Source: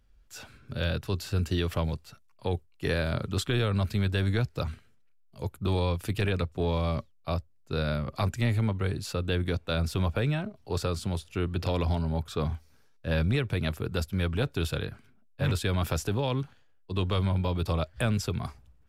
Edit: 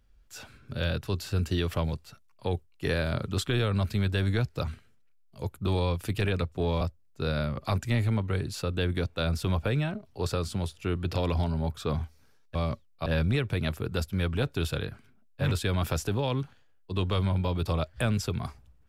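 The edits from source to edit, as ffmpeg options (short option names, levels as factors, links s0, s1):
-filter_complex "[0:a]asplit=4[s0][s1][s2][s3];[s0]atrim=end=6.812[s4];[s1]atrim=start=7.318:end=13.062[s5];[s2]atrim=start=6.808:end=7.322[s6];[s3]atrim=start=13.058[s7];[s4][s5]acrossfade=d=0.004:c1=hsin:c2=hsin[s8];[s8][s6]acrossfade=d=0.004:c1=hsin:c2=hsin[s9];[s9][s7]acrossfade=d=0.004:c1=hsin:c2=hsin"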